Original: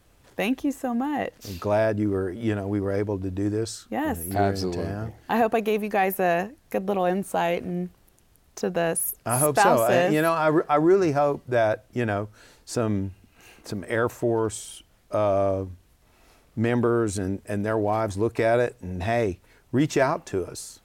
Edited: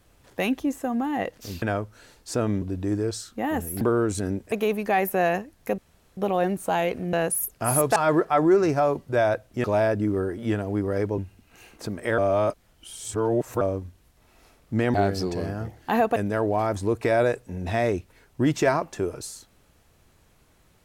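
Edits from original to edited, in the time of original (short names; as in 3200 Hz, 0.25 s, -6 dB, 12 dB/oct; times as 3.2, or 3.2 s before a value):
1.62–3.16 swap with 12.03–13.03
4.35–5.57 swap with 16.79–17.5
6.83 insert room tone 0.39 s
7.79–8.78 cut
9.61–10.35 cut
14.03–15.46 reverse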